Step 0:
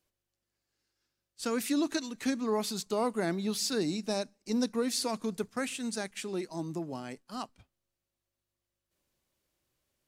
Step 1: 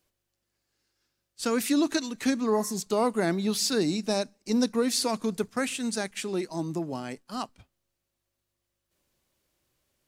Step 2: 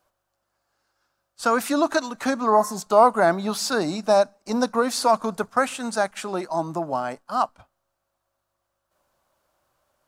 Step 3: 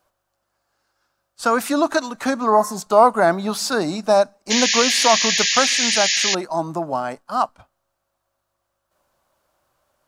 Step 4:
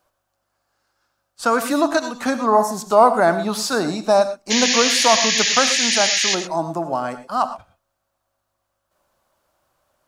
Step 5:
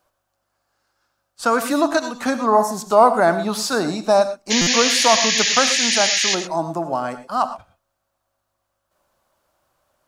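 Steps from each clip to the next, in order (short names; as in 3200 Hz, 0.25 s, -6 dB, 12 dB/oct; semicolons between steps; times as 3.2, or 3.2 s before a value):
spectral repair 2.58–2.79, 990–5200 Hz both; gain +5 dB
band shelf 920 Hz +13.5 dB
painted sound noise, 4.5–6.35, 1600–7100 Hz -22 dBFS; gain +2.5 dB
non-linear reverb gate 0.14 s rising, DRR 10.5 dB
stuck buffer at 4.61, samples 256, times 9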